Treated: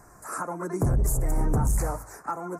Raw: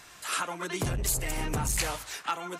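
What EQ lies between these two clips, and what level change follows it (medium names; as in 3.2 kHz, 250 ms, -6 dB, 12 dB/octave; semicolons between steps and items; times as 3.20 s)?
Butterworth band-stop 3.2 kHz, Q 0.51; tilt EQ -1.5 dB/octave; +3.0 dB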